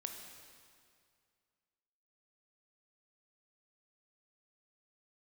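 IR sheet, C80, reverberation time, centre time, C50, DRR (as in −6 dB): 6.0 dB, 2.2 s, 55 ms, 4.5 dB, 3.5 dB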